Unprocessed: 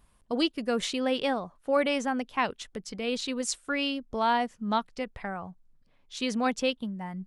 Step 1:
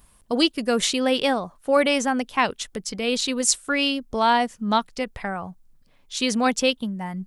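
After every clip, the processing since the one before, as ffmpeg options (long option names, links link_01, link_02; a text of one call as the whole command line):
ffmpeg -i in.wav -af "highshelf=frequency=5700:gain=10,volume=6dB" out.wav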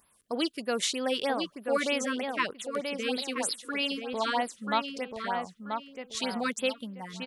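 ffmpeg -i in.wav -filter_complex "[0:a]highpass=frequency=360:poles=1,asplit=2[link_01][link_02];[link_02]adelay=984,lowpass=frequency=2700:poles=1,volume=-5dB,asplit=2[link_03][link_04];[link_04]adelay=984,lowpass=frequency=2700:poles=1,volume=0.31,asplit=2[link_05][link_06];[link_06]adelay=984,lowpass=frequency=2700:poles=1,volume=0.31,asplit=2[link_07][link_08];[link_08]adelay=984,lowpass=frequency=2700:poles=1,volume=0.31[link_09];[link_01][link_03][link_05][link_07][link_09]amix=inputs=5:normalize=0,afftfilt=real='re*(1-between(b*sr/1024,670*pow(7500/670,0.5+0.5*sin(2*PI*3.2*pts/sr))/1.41,670*pow(7500/670,0.5+0.5*sin(2*PI*3.2*pts/sr))*1.41))':imag='im*(1-between(b*sr/1024,670*pow(7500/670,0.5+0.5*sin(2*PI*3.2*pts/sr))/1.41,670*pow(7500/670,0.5+0.5*sin(2*PI*3.2*pts/sr))*1.41))':win_size=1024:overlap=0.75,volume=-6dB" out.wav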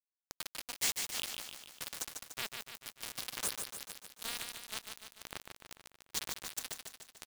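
ffmpeg -i in.wav -filter_complex "[0:a]afftfilt=real='re*lt(hypot(re,im),0.0708)':imag='im*lt(hypot(re,im),0.0708)':win_size=1024:overlap=0.75,acrusher=bits=4:mix=0:aa=0.000001,asplit=2[link_01][link_02];[link_02]aecho=0:1:147|294|441|588|735|882|1029:0.531|0.297|0.166|0.0932|0.0522|0.0292|0.0164[link_03];[link_01][link_03]amix=inputs=2:normalize=0" out.wav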